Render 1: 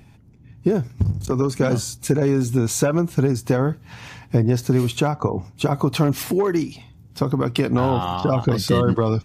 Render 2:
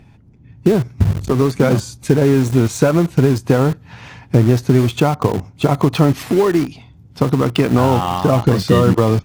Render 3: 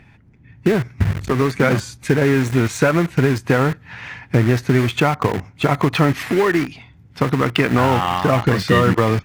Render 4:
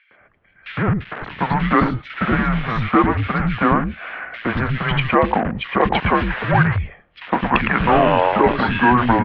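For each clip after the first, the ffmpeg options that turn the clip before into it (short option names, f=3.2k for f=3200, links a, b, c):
-filter_complex "[0:a]lowpass=f=3.5k:p=1,asplit=2[a][b];[b]acrusher=bits=3:mix=0:aa=0.000001,volume=-9dB[c];[a][c]amix=inputs=2:normalize=0,volume=3dB"
-af "equalizer=f=1.9k:w=1.1:g=12,volume=-3.5dB"
-filter_complex "[0:a]acrossover=split=450|2500[a][b][c];[b]adelay=110[d];[a]adelay=210[e];[e][d][c]amix=inputs=3:normalize=0,highpass=f=370:t=q:w=0.5412,highpass=f=370:t=q:w=1.307,lowpass=f=3.4k:t=q:w=0.5176,lowpass=f=3.4k:t=q:w=0.7071,lowpass=f=3.4k:t=q:w=1.932,afreqshift=-240,volume=5.5dB"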